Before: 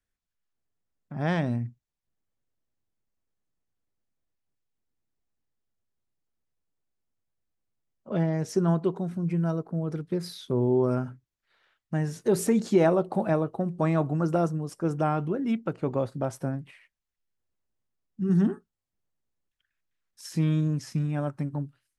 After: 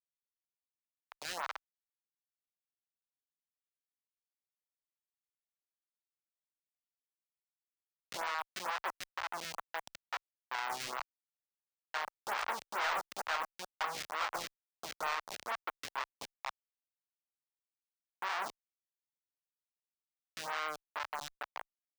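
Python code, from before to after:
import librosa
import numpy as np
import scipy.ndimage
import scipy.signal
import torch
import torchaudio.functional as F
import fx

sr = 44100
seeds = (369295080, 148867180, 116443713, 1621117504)

y = fx.spec_clip(x, sr, under_db=17)
y = fx.schmitt(y, sr, flips_db=-24.5)
y = scipy.signal.sosfilt(scipy.signal.cheby2(4, 60, 270.0, 'highpass', fs=sr, output='sos'), y)
y = np.clip(y, -10.0 ** (-35.0 / 20.0), 10.0 ** (-35.0 / 20.0))
y = fx.stagger_phaser(y, sr, hz=2.2)
y = y * librosa.db_to_amplitude(8.5)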